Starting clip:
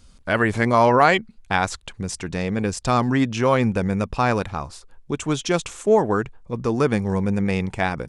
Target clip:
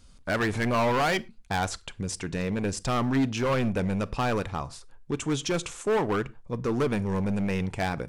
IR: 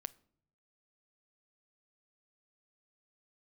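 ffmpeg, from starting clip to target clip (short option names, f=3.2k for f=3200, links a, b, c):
-filter_complex "[0:a]asoftclip=type=hard:threshold=-18.5dB[a];[1:a]atrim=start_sample=2205,afade=t=out:st=0.17:d=0.01,atrim=end_sample=7938[b];[a][b]afir=irnorm=-1:irlink=0"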